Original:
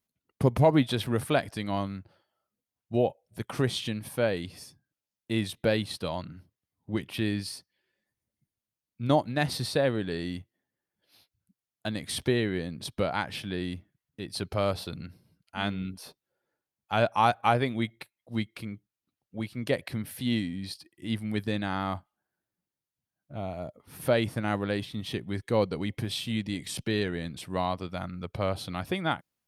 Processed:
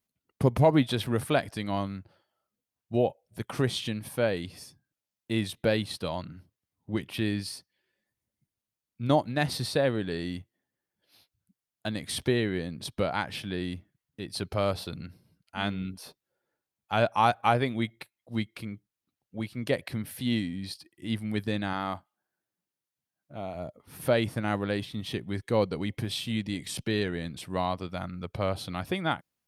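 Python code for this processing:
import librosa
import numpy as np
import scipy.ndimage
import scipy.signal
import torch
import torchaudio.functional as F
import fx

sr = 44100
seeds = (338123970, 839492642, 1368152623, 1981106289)

y = fx.low_shelf(x, sr, hz=120.0, db=-11.5, at=(21.73, 23.55))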